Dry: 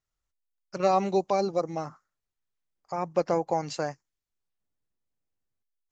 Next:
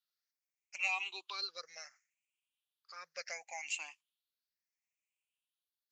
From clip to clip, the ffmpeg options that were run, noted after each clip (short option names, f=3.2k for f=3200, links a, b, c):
-af "afftfilt=real='re*pow(10,18/40*sin(2*PI*(0.61*log(max(b,1)*sr/1024/100)/log(2)-(0.7)*(pts-256)/sr)))':imag='im*pow(10,18/40*sin(2*PI*(0.61*log(max(b,1)*sr/1024/100)/log(2)-(0.7)*(pts-256)/sr)))':win_size=1024:overlap=0.75,highpass=f=2.5k:t=q:w=3.2,volume=-6dB"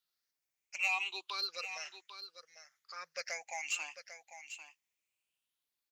-filter_complex "[0:a]asplit=2[a][b];[b]asoftclip=type=tanh:threshold=-36.5dB,volume=-5dB[c];[a][c]amix=inputs=2:normalize=0,aecho=1:1:797:0.282"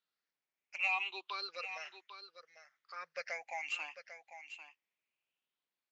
-af "highpass=150,lowpass=3k,volume=1dB"